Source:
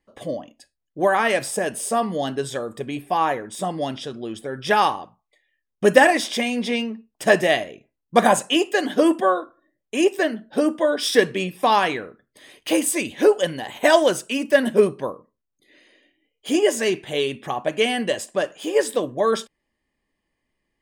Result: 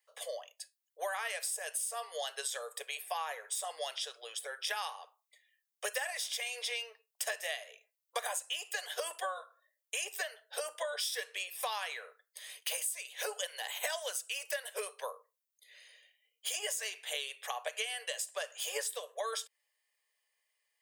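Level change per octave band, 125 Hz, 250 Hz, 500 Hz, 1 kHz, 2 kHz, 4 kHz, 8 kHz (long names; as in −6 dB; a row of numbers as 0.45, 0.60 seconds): below −40 dB, below −40 dB, −22.5 dB, −19.0 dB, −14.5 dB, −10.0 dB, −6.5 dB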